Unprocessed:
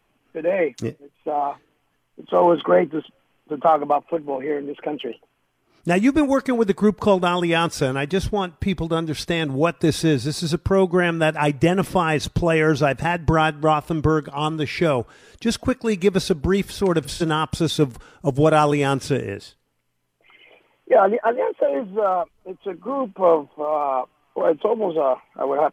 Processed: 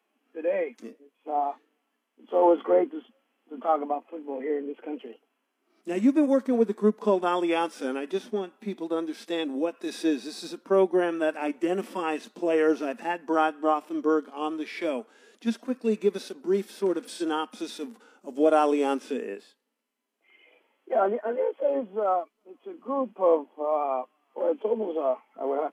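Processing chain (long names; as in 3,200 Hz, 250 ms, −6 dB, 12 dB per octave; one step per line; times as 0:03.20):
elliptic high-pass filter 220 Hz, stop band 40 dB
harmonic and percussive parts rebalanced percussive −16 dB
level −2.5 dB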